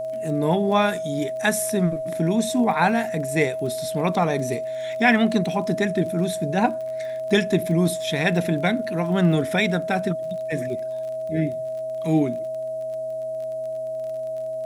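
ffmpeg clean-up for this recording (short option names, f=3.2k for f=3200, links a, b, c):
-af "adeclick=t=4,bandreject=f=127.4:t=h:w=4,bandreject=f=254.8:t=h:w=4,bandreject=f=382.2:t=h:w=4,bandreject=f=509.6:t=h:w=4,bandreject=f=637:t=h:w=4,bandreject=f=640:w=30,agate=range=-21dB:threshold=-21dB"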